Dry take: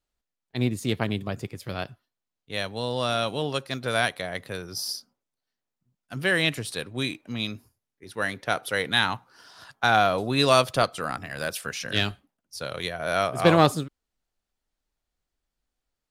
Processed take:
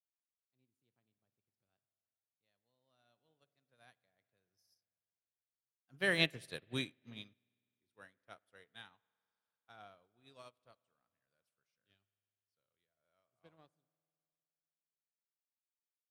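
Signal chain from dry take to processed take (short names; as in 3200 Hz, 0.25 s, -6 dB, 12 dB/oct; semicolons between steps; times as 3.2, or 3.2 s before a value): Doppler pass-by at 6.61, 13 m/s, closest 6.7 m; spring tank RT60 2.9 s, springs 50 ms, chirp 60 ms, DRR 12 dB; upward expander 2.5:1, over -45 dBFS; gain -4 dB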